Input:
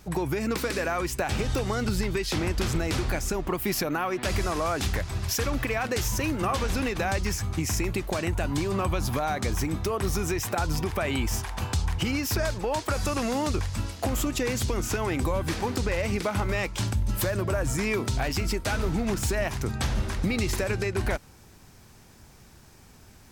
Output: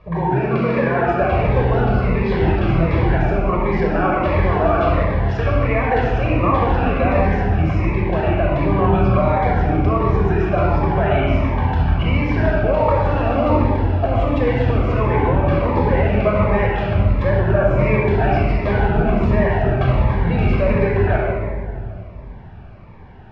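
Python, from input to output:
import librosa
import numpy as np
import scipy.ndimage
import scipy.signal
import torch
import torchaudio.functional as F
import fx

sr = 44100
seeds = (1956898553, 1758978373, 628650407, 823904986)

y = scipy.signal.sosfilt(scipy.signal.butter(4, 2800.0, 'lowpass', fs=sr, output='sos'), x)
y = fx.peak_eq(y, sr, hz=800.0, db=10.5, octaves=1.2)
y = fx.room_shoebox(y, sr, seeds[0], volume_m3=3800.0, walls='mixed', distance_m=5.6)
y = fx.notch_cascade(y, sr, direction='falling', hz=1.4)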